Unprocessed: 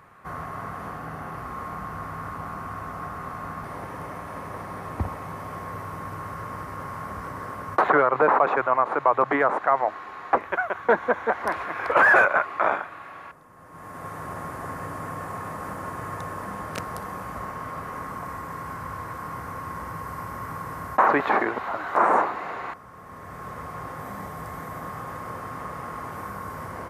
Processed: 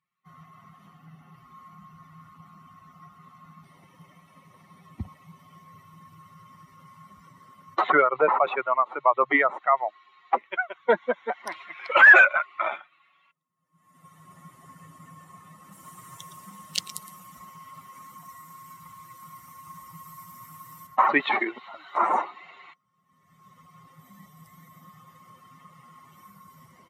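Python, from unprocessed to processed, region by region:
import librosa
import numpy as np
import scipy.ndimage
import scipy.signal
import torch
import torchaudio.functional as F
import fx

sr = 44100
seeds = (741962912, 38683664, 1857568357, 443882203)

y = fx.chain(x, sr, fx.high_shelf(hz=6800.0, db=9.0),
    fx.echo_single(ms=115, db=-8.0),
    fx.doppler_dist(depth_ms=0.27), at=(15.72, 20.87))
y = fx.bin_expand(y, sr, power=2.0)
y = fx.weighting(y, sr, curve='D')
y = y * librosa.db_to_amplitude(2.5)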